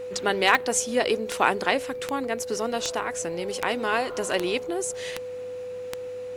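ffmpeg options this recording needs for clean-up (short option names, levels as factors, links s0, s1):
-af "adeclick=t=4,bandreject=f=100.6:t=h:w=4,bandreject=f=201.2:t=h:w=4,bandreject=f=301.8:t=h:w=4,bandreject=f=500:w=30"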